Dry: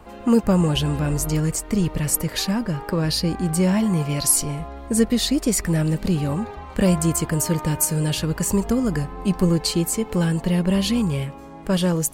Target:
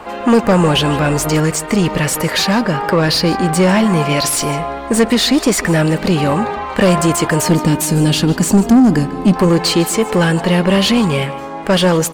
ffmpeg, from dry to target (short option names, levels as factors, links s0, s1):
-filter_complex "[0:a]asettb=1/sr,asplit=3[s0][s1][s2];[s0]atrim=end=7.484[s3];[s1]atrim=start=7.48:end=9.36,asetpts=PTS-STARTPTS,afade=t=in:d=0.004:c=qsin,afade=t=out:st=1.876:d=0.004:c=qsin,equalizer=f=250:t=o:w=1:g=11,equalizer=f=500:t=o:w=1:g=-4,equalizer=f=1000:t=o:w=1:g=-7,equalizer=f=2000:t=o:w=1:g=-6[s4];[s2]atrim=start=9.356[s5];[s3][s4]acrossfade=d=0.004:c1=hsin:c2=qsin[s6];[s6][s5]acrossfade=d=0.004:c1=qsin:c2=hsin,asplit=2[s7][s8];[s8]highpass=f=720:p=1,volume=12.6,asoftclip=type=tanh:threshold=0.631[s9];[s7][s9]amix=inputs=2:normalize=0,lowpass=f=2800:p=1,volume=0.501,asplit=2[s10][s11];[s11]aecho=0:1:151:0.126[s12];[s10][s12]amix=inputs=2:normalize=0,volume=1.33"